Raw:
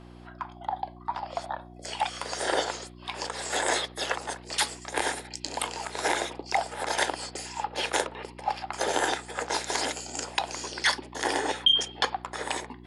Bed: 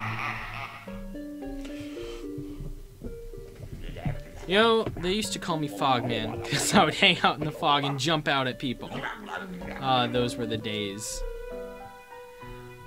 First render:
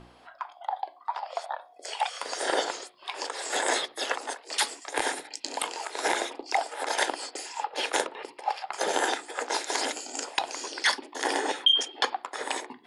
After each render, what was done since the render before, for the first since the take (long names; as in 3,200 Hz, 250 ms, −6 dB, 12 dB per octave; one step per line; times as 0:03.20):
hum removal 60 Hz, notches 6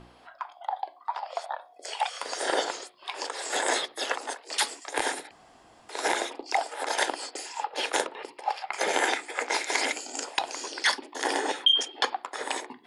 0:05.31–0:05.89: fill with room tone
0:08.64–0:09.98: parametric band 2,200 Hz +11 dB 0.36 octaves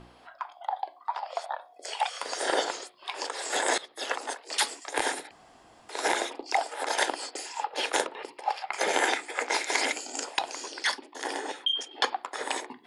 0:03.78–0:04.18: fade in, from −17.5 dB
0:10.26–0:11.91: fade out quadratic, to −7 dB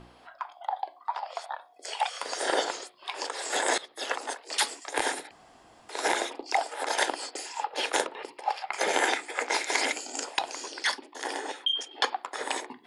0:01.32–0:01.87: parametric band 580 Hz −6.5 dB
0:11.13–0:12.27: high-pass filter 220 Hz 6 dB per octave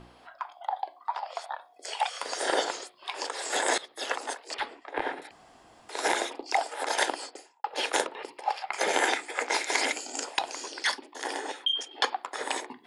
0:04.54–0:05.22: high-frequency loss of the air 450 metres
0:07.12–0:07.64: fade out and dull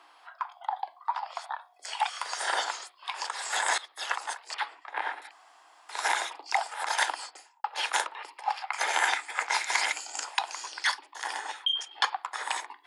Chebyshev high-pass filter 290 Hz, order 6
low shelf with overshoot 640 Hz −13 dB, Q 1.5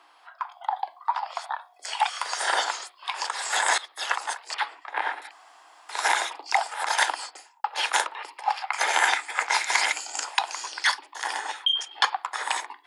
automatic gain control gain up to 4.5 dB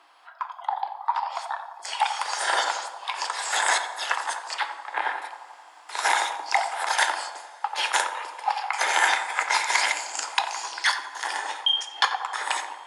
feedback echo with a band-pass in the loop 88 ms, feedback 72%, band-pass 750 Hz, level −8.5 dB
coupled-rooms reverb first 0.52 s, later 4.2 s, from −18 dB, DRR 10 dB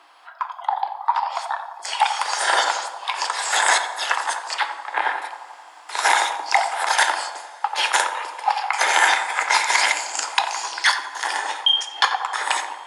level +5 dB
brickwall limiter −3 dBFS, peak gain reduction 3 dB